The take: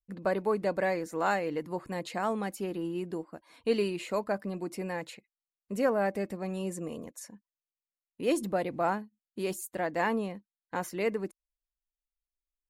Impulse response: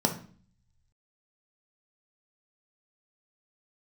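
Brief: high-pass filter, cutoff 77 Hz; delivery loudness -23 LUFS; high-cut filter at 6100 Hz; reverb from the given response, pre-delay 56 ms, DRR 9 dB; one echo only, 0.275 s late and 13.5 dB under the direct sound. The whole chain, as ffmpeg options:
-filter_complex "[0:a]highpass=77,lowpass=6.1k,aecho=1:1:275:0.211,asplit=2[a][b];[1:a]atrim=start_sample=2205,adelay=56[c];[b][c]afir=irnorm=-1:irlink=0,volume=-19.5dB[d];[a][d]amix=inputs=2:normalize=0,volume=8dB"

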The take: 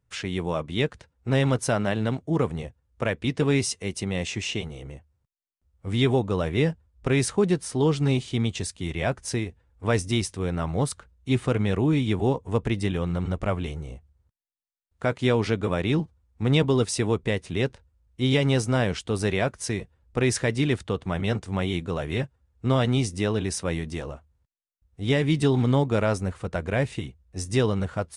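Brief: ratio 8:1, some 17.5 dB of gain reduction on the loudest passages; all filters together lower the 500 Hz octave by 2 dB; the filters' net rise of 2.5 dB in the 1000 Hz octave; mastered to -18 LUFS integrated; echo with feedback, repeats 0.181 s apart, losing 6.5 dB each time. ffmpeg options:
-af "equalizer=f=500:t=o:g=-3.5,equalizer=f=1k:t=o:g=4.5,acompressor=threshold=-37dB:ratio=8,aecho=1:1:181|362|543|724|905|1086:0.473|0.222|0.105|0.0491|0.0231|0.0109,volume=22.5dB"

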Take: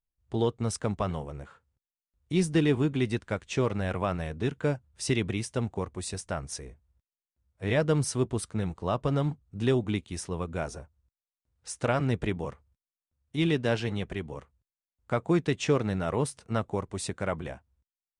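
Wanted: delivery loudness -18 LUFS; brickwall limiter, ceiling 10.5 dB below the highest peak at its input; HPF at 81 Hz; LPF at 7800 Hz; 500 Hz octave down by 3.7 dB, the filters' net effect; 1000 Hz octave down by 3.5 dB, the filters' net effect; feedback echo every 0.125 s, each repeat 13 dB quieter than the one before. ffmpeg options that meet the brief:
-af "highpass=81,lowpass=7.8k,equalizer=f=500:t=o:g=-4,equalizer=f=1k:t=o:g=-3.5,alimiter=level_in=1dB:limit=-24dB:level=0:latency=1,volume=-1dB,aecho=1:1:125|250|375:0.224|0.0493|0.0108,volume=19dB"

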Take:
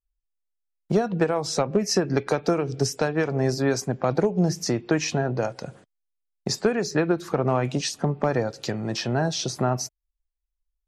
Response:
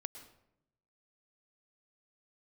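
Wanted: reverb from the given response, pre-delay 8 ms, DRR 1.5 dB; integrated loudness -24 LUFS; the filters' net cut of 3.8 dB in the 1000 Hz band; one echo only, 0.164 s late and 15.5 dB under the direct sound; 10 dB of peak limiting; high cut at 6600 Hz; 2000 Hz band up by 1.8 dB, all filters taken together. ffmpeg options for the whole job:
-filter_complex "[0:a]lowpass=6.6k,equalizer=f=1k:t=o:g=-7,equalizer=f=2k:t=o:g=5,alimiter=limit=-20dB:level=0:latency=1,aecho=1:1:164:0.168,asplit=2[a][b];[1:a]atrim=start_sample=2205,adelay=8[c];[b][c]afir=irnorm=-1:irlink=0,volume=1.5dB[d];[a][d]amix=inputs=2:normalize=0,volume=3dB"

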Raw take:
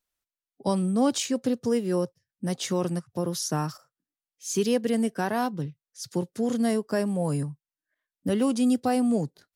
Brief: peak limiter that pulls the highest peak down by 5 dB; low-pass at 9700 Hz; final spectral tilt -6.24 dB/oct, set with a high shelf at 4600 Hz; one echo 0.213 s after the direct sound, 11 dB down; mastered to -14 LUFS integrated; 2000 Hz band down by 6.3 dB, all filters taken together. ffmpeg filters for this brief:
-af "lowpass=9.7k,equalizer=f=2k:t=o:g=-8,highshelf=f=4.6k:g=-4.5,alimiter=limit=-18.5dB:level=0:latency=1,aecho=1:1:213:0.282,volume=14.5dB"

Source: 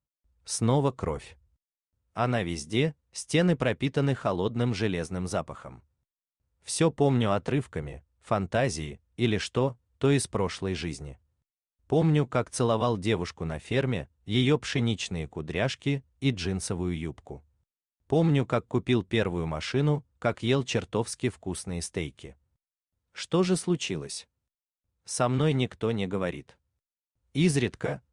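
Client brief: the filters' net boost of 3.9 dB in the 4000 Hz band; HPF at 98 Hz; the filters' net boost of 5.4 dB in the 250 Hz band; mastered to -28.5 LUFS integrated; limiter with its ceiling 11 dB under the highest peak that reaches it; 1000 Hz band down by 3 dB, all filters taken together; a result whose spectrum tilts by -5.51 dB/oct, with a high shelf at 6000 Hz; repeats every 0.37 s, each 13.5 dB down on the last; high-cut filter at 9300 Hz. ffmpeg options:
-af "highpass=98,lowpass=9.3k,equalizer=f=250:t=o:g=7.5,equalizer=f=1k:t=o:g=-5,equalizer=f=4k:t=o:g=6.5,highshelf=f=6k:g=-3.5,alimiter=limit=-19dB:level=0:latency=1,aecho=1:1:370|740:0.211|0.0444,volume=2dB"

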